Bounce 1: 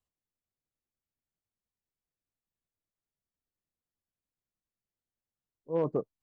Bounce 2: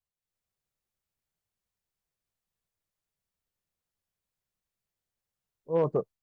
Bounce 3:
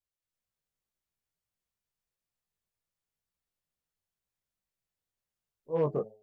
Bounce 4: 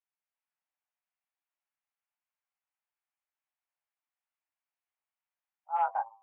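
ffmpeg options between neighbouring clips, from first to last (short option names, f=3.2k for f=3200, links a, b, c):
-af "equalizer=f=280:t=o:w=0.48:g=-8.5,dynaudnorm=f=180:g=3:m=10dB,volume=-5.5dB"
-af "bandreject=f=106.4:t=h:w=4,bandreject=f=212.8:t=h:w=4,bandreject=f=319.2:t=h:w=4,bandreject=f=425.6:t=h:w=4,bandreject=f=532:t=h:w=4,bandreject=f=638.4:t=h:w=4,bandreject=f=744.8:t=h:w=4,bandreject=f=851.2:t=h:w=4,flanger=delay=16:depth=5.5:speed=2.1"
-af "highpass=f=280:t=q:w=0.5412,highpass=f=280:t=q:w=1.307,lowpass=f=2.5k:t=q:w=0.5176,lowpass=f=2.5k:t=q:w=0.7071,lowpass=f=2.5k:t=q:w=1.932,afreqshift=360"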